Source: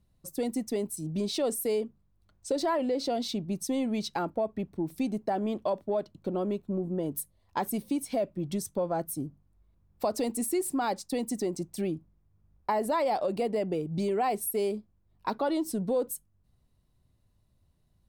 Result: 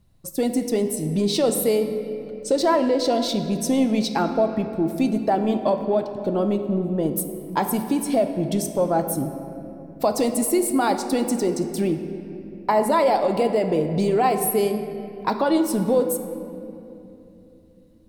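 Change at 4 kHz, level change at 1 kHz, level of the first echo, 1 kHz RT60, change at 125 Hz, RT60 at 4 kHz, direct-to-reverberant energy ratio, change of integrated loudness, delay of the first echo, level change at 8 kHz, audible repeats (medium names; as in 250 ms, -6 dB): +8.5 dB, +9.0 dB, no echo, 2.6 s, +9.0 dB, 1.8 s, 6.5 dB, +9.0 dB, no echo, +8.5 dB, no echo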